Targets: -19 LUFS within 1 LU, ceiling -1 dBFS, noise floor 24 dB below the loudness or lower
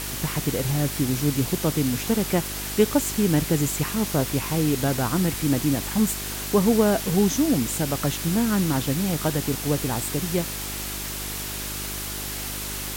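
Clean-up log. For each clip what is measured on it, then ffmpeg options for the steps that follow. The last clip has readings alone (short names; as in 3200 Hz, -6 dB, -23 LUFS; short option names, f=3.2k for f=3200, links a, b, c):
hum 50 Hz; harmonics up to 400 Hz; hum level -35 dBFS; noise floor -32 dBFS; noise floor target -48 dBFS; loudness -24.0 LUFS; peak -6.0 dBFS; loudness target -19.0 LUFS
-> -af "bandreject=f=50:t=h:w=4,bandreject=f=100:t=h:w=4,bandreject=f=150:t=h:w=4,bandreject=f=200:t=h:w=4,bandreject=f=250:t=h:w=4,bandreject=f=300:t=h:w=4,bandreject=f=350:t=h:w=4,bandreject=f=400:t=h:w=4"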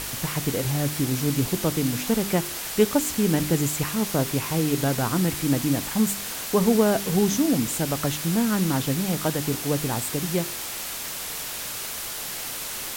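hum none; noise floor -33 dBFS; noise floor target -49 dBFS
-> -af "afftdn=nr=16:nf=-33"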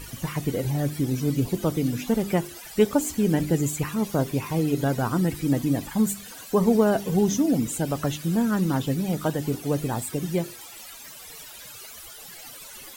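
noise floor -43 dBFS; noise floor target -49 dBFS
-> -af "afftdn=nr=6:nf=-43"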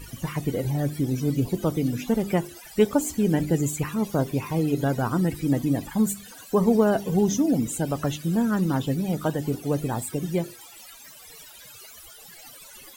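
noise floor -46 dBFS; noise floor target -49 dBFS
-> -af "afftdn=nr=6:nf=-46"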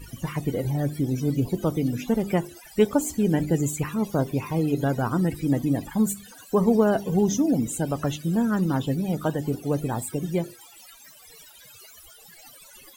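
noise floor -50 dBFS; loudness -25.0 LUFS; peak -8.0 dBFS; loudness target -19.0 LUFS
-> -af "volume=6dB"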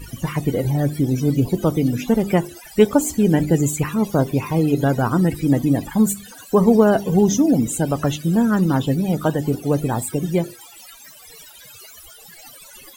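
loudness -19.0 LUFS; peak -2.0 dBFS; noise floor -44 dBFS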